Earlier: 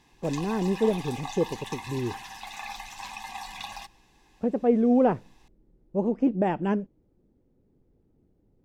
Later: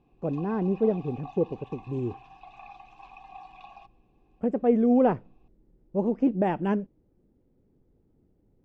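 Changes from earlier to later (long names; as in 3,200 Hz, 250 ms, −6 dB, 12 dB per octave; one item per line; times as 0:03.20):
background: add formant filter a
master: add high-frequency loss of the air 69 metres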